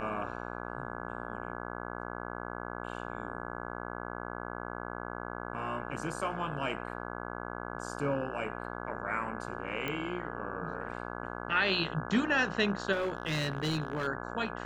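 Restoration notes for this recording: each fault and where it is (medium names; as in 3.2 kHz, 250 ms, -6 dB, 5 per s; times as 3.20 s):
buzz 60 Hz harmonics 28 -40 dBFS
9.88 s: pop -20 dBFS
12.92–14.08 s: clipped -27 dBFS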